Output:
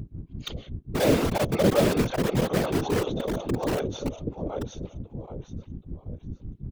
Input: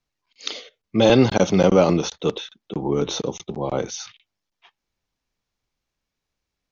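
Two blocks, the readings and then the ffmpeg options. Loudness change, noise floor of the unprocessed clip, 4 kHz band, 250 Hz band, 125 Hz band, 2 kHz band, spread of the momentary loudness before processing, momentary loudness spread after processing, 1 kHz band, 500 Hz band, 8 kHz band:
-5.5 dB, -83 dBFS, -6.5 dB, -4.5 dB, -2.0 dB, -2.5 dB, 18 LU, 17 LU, -4.0 dB, -5.0 dB, no reading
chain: -filter_complex "[0:a]lowshelf=f=120:g=-6,asplit=2[s0][s1];[s1]aecho=0:1:781|1562|2343|3124:0.562|0.18|0.0576|0.0184[s2];[s0][s2]amix=inputs=2:normalize=0,aeval=exprs='val(0)+0.0112*(sin(2*PI*60*n/s)+sin(2*PI*2*60*n/s)/2+sin(2*PI*3*60*n/s)/3+sin(2*PI*4*60*n/s)/4+sin(2*PI*5*60*n/s)/5)':c=same,aexciter=amount=1.3:drive=3.8:freq=2800,acrossover=split=550[s3][s4];[s3]aeval=exprs='val(0)*(1-1/2+1/2*cos(2*PI*5.4*n/s))':c=same[s5];[s4]aeval=exprs='val(0)*(1-1/2-1/2*cos(2*PI*5.4*n/s))':c=same[s6];[s5][s6]amix=inputs=2:normalize=0,tiltshelf=f=970:g=9,asplit=2[s7][s8];[s8]aeval=exprs='(mod(6.68*val(0)+1,2)-1)/6.68':c=same,volume=0.668[s9];[s7][s9]amix=inputs=2:normalize=0,afftfilt=real='hypot(re,im)*cos(2*PI*random(0))':imag='hypot(re,im)*sin(2*PI*random(1))':win_size=512:overlap=0.75"

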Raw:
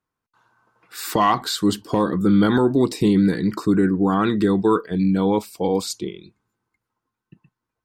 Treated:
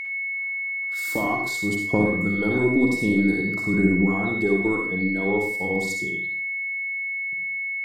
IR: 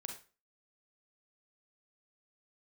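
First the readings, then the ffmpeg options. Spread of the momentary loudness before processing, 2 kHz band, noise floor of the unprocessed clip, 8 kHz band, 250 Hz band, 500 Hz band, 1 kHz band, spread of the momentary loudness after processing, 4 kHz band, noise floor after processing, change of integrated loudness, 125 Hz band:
8 LU, +12.5 dB, -84 dBFS, -4.5 dB, -4.0 dB, -3.5 dB, -9.0 dB, 6 LU, -10.5 dB, -29 dBFS, -3.0 dB, -4.0 dB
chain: -filter_complex "[0:a]acrossover=split=850|5100[s0][s1][s2];[s1]acompressor=threshold=0.00794:ratio=6[s3];[s0][s3][s2]amix=inputs=3:normalize=0,aphaser=in_gain=1:out_gain=1:delay=4.4:decay=0.47:speed=0.51:type=triangular,aeval=exprs='0.841*(cos(1*acos(clip(val(0)/0.841,-1,1)))-cos(1*PI/2))+0.119*(cos(2*acos(clip(val(0)/0.841,-1,1)))-cos(2*PI/2))':c=same,aeval=exprs='val(0)+0.0794*sin(2*PI*2200*n/s)':c=same[s4];[1:a]atrim=start_sample=2205,asetrate=32634,aresample=44100[s5];[s4][s5]afir=irnorm=-1:irlink=0,volume=0.668"

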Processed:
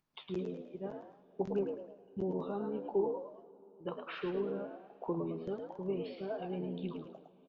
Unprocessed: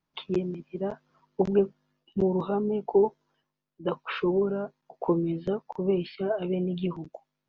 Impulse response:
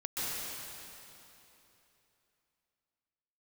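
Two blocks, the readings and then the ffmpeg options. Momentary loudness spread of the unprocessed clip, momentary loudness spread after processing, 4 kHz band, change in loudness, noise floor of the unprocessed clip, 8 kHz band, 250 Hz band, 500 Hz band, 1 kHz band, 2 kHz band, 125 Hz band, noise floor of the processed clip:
10 LU, 12 LU, -10.0 dB, -10.5 dB, -84 dBFS, no reading, -10.5 dB, -10.0 dB, -9.5 dB, -9.5 dB, -11.0 dB, -63 dBFS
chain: -filter_complex "[0:a]flanger=delay=7.5:depth=9.1:regen=76:speed=1.4:shape=sinusoidal,asplit=5[s0][s1][s2][s3][s4];[s1]adelay=108,afreqshift=75,volume=0.473[s5];[s2]adelay=216,afreqshift=150,volume=0.166[s6];[s3]adelay=324,afreqshift=225,volume=0.0582[s7];[s4]adelay=432,afreqshift=300,volume=0.0202[s8];[s0][s5][s6][s7][s8]amix=inputs=5:normalize=0,agate=range=0.0224:threshold=0.00316:ratio=3:detection=peak,asplit=2[s9][s10];[1:a]atrim=start_sample=2205[s11];[s10][s11]afir=irnorm=-1:irlink=0,volume=0.0596[s12];[s9][s12]amix=inputs=2:normalize=0,acompressor=mode=upward:threshold=0.00447:ratio=2.5,volume=0.447"

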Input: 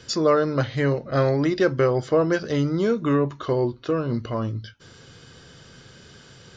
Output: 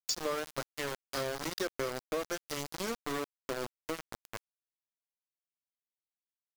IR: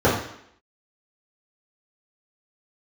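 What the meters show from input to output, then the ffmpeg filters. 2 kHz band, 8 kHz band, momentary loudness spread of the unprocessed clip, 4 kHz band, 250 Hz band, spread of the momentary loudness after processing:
-9.5 dB, no reading, 7 LU, -4.5 dB, -19.5 dB, 7 LU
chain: -af "bass=f=250:g=-5,treble=f=4000:g=15,aeval=exprs='val(0)*gte(abs(val(0)),0.112)':c=same,acompressor=threshold=0.0562:ratio=3,volume=0.422"

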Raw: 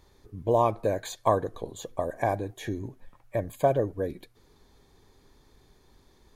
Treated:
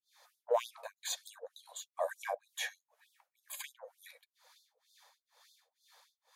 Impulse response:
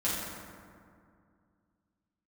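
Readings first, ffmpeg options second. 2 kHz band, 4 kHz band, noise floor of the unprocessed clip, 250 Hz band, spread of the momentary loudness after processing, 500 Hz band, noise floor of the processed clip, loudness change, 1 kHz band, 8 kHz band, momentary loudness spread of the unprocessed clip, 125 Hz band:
-3.5 dB, +2.0 dB, -61 dBFS, under -40 dB, 20 LU, -12.5 dB, under -85 dBFS, -11.0 dB, -13.5 dB, +1.0 dB, 13 LU, under -40 dB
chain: -filter_complex "[0:a]acrossover=split=450[s0][s1];[s0]aeval=exprs='val(0)*(1-1/2+1/2*cos(2*PI*2.1*n/s))':c=same[s2];[s1]aeval=exprs='val(0)*(1-1/2-1/2*cos(2*PI*2.1*n/s))':c=same[s3];[s2][s3]amix=inputs=2:normalize=0,aeval=exprs='0.224*(cos(1*acos(clip(val(0)/0.224,-1,1)))-cos(1*PI/2))+0.02*(cos(3*acos(clip(val(0)/0.224,-1,1)))-cos(3*PI/2))+0.00158*(cos(4*acos(clip(val(0)/0.224,-1,1)))-cos(4*PI/2))+0.00158*(cos(8*acos(clip(val(0)/0.224,-1,1)))-cos(8*PI/2))':c=same,afftfilt=real='re*gte(b*sr/1024,460*pow(3500/460,0.5+0.5*sin(2*PI*3.3*pts/sr)))':imag='im*gte(b*sr/1024,460*pow(3500/460,0.5+0.5*sin(2*PI*3.3*pts/sr)))':win_size=1024:overlap=0.75,volume=2.37"

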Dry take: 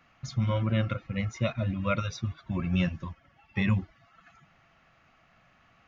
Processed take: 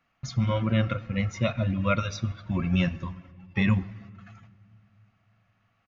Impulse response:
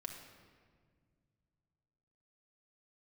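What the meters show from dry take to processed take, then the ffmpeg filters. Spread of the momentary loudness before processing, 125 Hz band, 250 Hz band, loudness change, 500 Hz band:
9 LU, +2.0 dB, +3.5 dB, +3.0 dB, +3.0 dB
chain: -filter_complex "[0:a]agate=range=0.224:threshold=0.00126:ratio=16:detection=peak,asplit=2[s0][s1];[1:a]atrim=start_sample=2205[s2];[s1][s2]afir=irnorm=-1:irlink=0,volume=0.335[s3];[s0][s3]amix=inputs=2:normalize=0,aresample=16000,aresample=44100,volume=1.19"

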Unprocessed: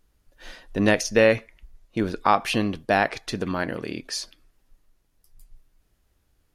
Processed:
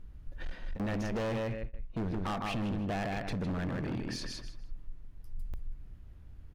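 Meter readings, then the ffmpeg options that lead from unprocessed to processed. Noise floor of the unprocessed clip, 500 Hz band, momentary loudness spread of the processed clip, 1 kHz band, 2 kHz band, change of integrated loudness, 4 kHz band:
-69 dBFS, -14.5 dB, 18 LU, -14.5 dB, -15.5 dB, -12.5 dB, -12.0 dB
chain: -filter_complex "[0:a]aecho=1:1:156|312|468:0.447|0.0849|0.0161,asplit=2[s0][s1];[s1]asoftclip=type=tanh:threshold=0.158,volume=0.531[s2];[s0][s2]amix=inputs=2:normalize=0,bass=f=250:g=14,treble=f=4000:g=-13,acompressor=threshold=0.1:ratio=2,asoftclip=type=hard:threshold=0.0708,alimiter=level_in=2.24:limit=0.0631:level=0:latency=1:release=28,volume=0.447"

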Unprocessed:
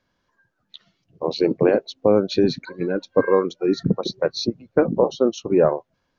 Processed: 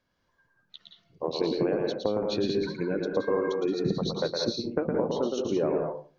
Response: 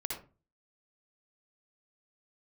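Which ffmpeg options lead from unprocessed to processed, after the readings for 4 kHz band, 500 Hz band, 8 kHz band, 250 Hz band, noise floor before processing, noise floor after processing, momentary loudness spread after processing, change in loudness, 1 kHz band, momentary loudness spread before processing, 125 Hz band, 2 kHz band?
-4.0 dB, -8.0 dB, no reading, -7.0 dB, -73 dBFS, -73 dBFS, 3 LU, -7.5 dB, -7.5 dB, 8 LU, -6.5 dB, -7.0 dB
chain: -filter_complex "[0:a]acompressor=threshold=0.112:ratio=6,asplit=2[s0][s1];[1:a]atrim=start_sample=2205,adelay=113[s2];[s1][s2]afir=irnorm=-1:irlink=0,volume=0.75[s3];[s0][s3]amix=inputs=2:normalize=0,volume=0.562"

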